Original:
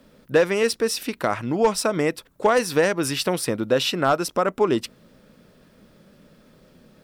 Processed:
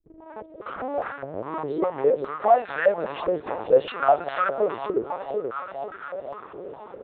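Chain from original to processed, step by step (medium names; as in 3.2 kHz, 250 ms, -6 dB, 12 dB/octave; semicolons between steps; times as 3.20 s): tape start-up on the opening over 2.21 s; comb 7.2 ms, depth 51%; echo whose repeats swap between lows and highs 245 ms, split 960 Hz, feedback 70%, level -10 dB; power-law waveshaper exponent 0.5; LPC vocoder at 8 kHz pitch kept; step-sequenced band-pass 4.9 Hz 420–1500 Hz; trim +1 dB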